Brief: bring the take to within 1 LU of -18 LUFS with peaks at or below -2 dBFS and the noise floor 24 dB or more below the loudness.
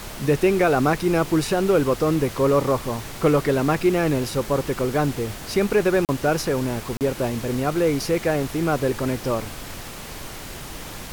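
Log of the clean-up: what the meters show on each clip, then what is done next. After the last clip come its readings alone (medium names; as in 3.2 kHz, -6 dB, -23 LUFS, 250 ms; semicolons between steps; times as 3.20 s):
dropouts 2; longest dropout 38 ms; noise floor -36 dBFS; noise floor target -46 dBFS; loudness -22.0 LUFS; peak level -8.0 dBFS; loudness target -18.0 LUFS
-> interpolate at 6.05/6.97 s, 38 ms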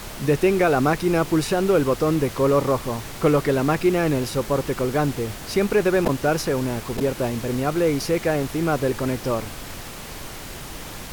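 dropouts 0; noise floor -36 dBFS; noise floor target -46 dBFS
-> noise print and reduce 10 dB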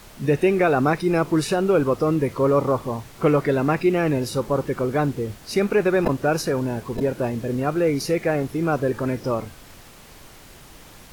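noise floor -46 dBFS; loudness -22.0 LUFS; peak level -8.5 dBFS; loudness target -18.0 LUFS
-> trim +4 dB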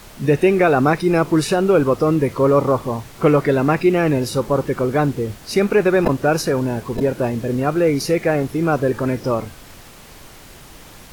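loudness -18.0 LUFS; peak level -4.5 dBFS; noise floor -42 dBFS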